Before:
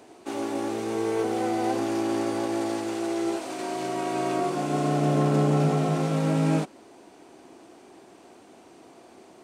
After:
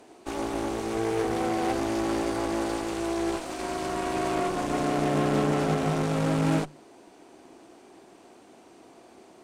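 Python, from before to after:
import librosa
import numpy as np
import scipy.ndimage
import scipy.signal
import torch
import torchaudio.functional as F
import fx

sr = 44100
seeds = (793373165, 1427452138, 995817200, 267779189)

y = fx.hum_notches(x, sr, base_hz=50, count=3)
y = fx.cheby_harmonics(y, sr, harmonics=(8,), levels_db=(-18,), full_scale_db=-13.0)
y = y * 10.0 ** (-1.5 / 20.0)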